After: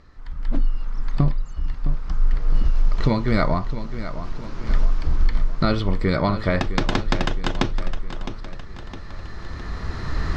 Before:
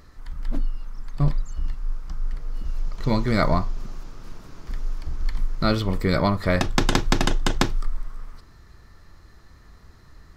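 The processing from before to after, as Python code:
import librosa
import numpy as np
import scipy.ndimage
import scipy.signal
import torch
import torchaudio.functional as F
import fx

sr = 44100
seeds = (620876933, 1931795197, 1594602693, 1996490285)

y = fx.recorder_agc(x, sr, target_db=-7.5, rise_db_per_s=9.8, max_gain_db=30)
y = scipy.signal.sosfilt(scipy.signal.butter(2, 4500.0, 'lowpass', fs=sr, output='sos'), y)
y = fx.echo_feedback(y, sr, ms=661, feedback_pct=51, wet_db=-12.0)
y = y * 10.0 ** (-1.5 / 20.0)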